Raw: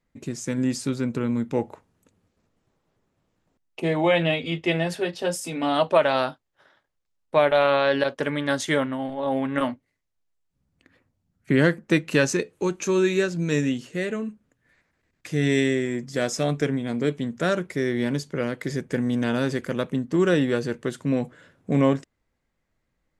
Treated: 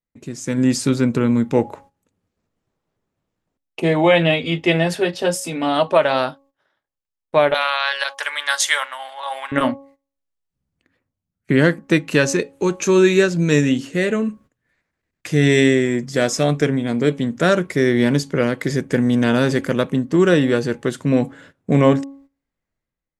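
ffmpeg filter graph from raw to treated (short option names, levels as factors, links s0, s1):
-filter_complex "[0:a]asettb=1/sr,asplit=3[s0][s1][s2];[s0]atrim=end=7.544[s3];[s1]atrim=start=7.54:end=9.52,asetpts=PTS-STARTPTS,afade=t=in:d=0.004:c=qsin,afade=t=out:st=1.976:d=0.004:c=qsin,highpass=f=860:w=0.5412,highpass=f=860:w=1.3066,highshelf=f=3900:g=8.5[s4];[s2]atrim=start=9.516[s5];[s3][s4]acrossfade=d=0.004:c1=hsin:c2=qsin[s6];[s6][s5]acrossfade=d=0.004:c1=qsin:c2=hsin,bandreject=f=275.8:t=h:w=4,bandreject=f=551.6:t=h:w=4,bandreject=f=827.4:t=h:w=4,bandreject=f=1103.2:t=h:w=4,agate=range=0.178:threshold=0.00251:ratio=16:detection=peak,dynaudnorm=f=120:g=9:m=3.76,volume=0.891"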